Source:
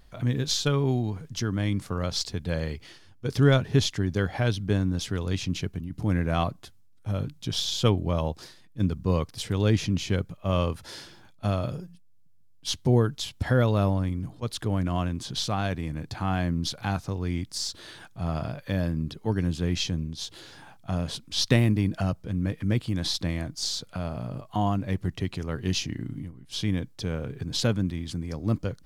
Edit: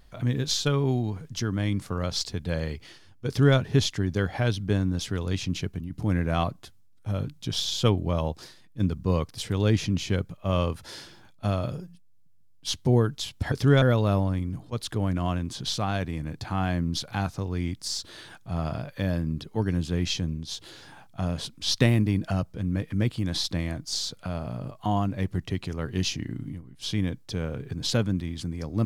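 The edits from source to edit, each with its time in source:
3.27–3.57 copy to 13.52

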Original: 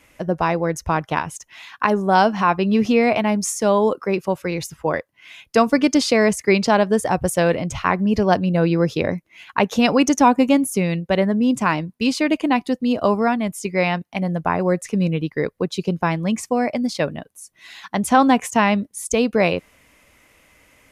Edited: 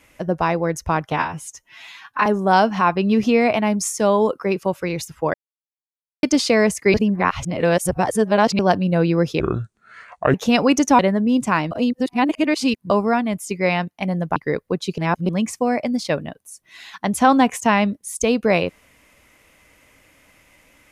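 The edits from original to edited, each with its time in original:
1.12–1.88 stretch 1.5×
4.96–5.85 mute
6.56–8.21 reverse
9.02–9.64 speed 66%
10.29–11.13 cut
11.85–13.04 reverse
14.5–15.26 cut
15.88–16.19 reverse

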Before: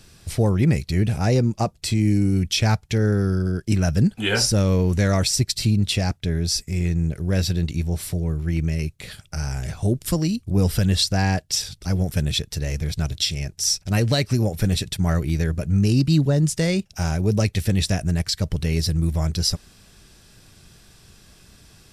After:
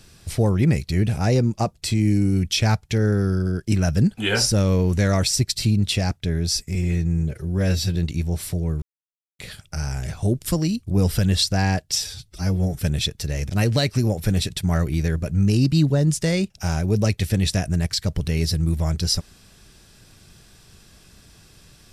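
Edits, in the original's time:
6.75–7.55 stretch 1.5×
8.42–8.99 mute
11.58–12.13 stretch 1.5×
12.82–13.85 cut

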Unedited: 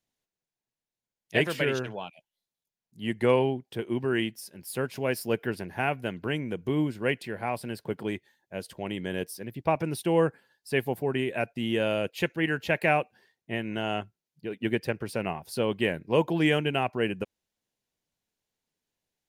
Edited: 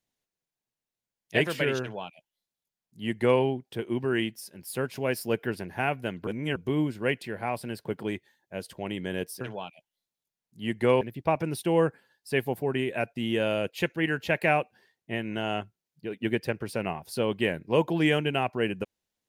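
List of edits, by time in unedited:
1.81–3.41 copy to 9.41
6.27–6.56 reverse

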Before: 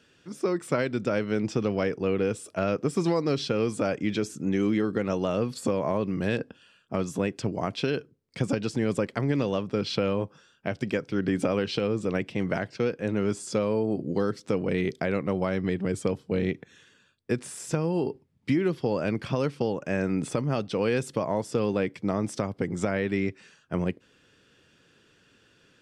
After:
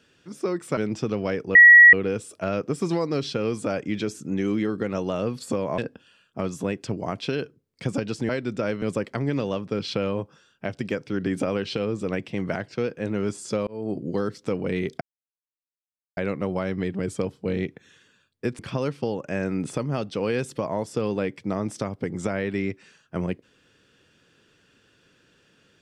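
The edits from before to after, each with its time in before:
0.77–1.3 move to 8.84
2.08 add tone 1920 Hz -6.5 dBFS 0.38 s
5.93–6.33 cut
13.69–13.94 fade in
15.03 insert silence 1.16 s
17.45–19.17 cut

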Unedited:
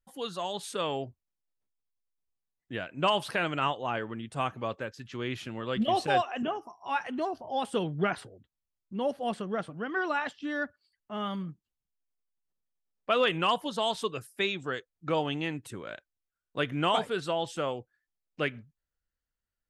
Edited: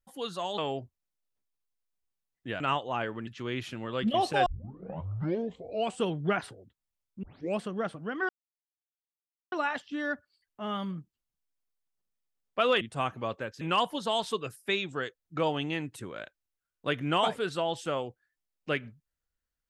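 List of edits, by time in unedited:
0.58–0.83 cut
2.85–3.54 cut
4.21–5.01 move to 13.32
6.2 tape start 1.61 s
8.97 tape start 0.35 s
10.03 insert silence 1.23 s

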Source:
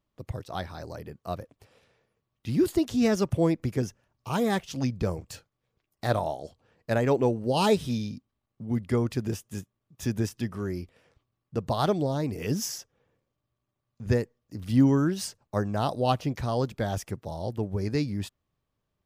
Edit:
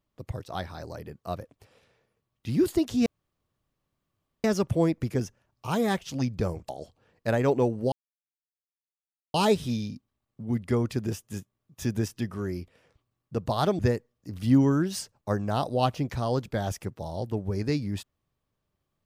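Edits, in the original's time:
3.06 insert room tone 1.38 s
5.31–6.32 cut
7.55 insert silence 1.42 s
12–14.05 cut

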